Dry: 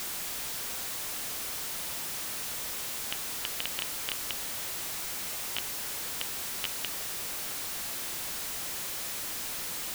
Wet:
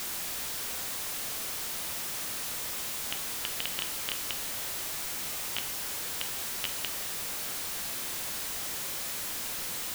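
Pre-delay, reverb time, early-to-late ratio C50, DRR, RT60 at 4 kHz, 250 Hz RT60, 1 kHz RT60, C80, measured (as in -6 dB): 9 ms, 0.85 s, 12.0 dB, 8.5 dB, 0.70 s, 0.95 s, 0.75 s, 14.5 dB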